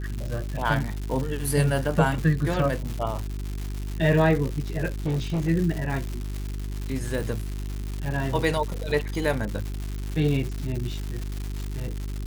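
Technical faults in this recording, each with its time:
crackle 270/s -29 dBFS
hum 50 Hz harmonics 8 -31 dBFS
5.06–5.49 clipped -22 dBFS

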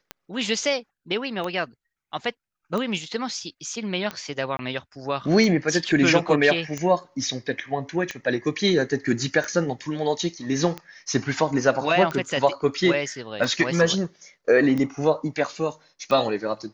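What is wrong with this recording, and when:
tick 45 rpm -16 dBFS
4.57–4.59 gap 20 ms

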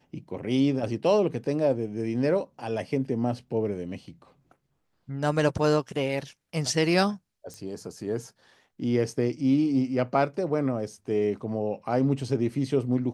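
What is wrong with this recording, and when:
7.54 pop -27 dBFS

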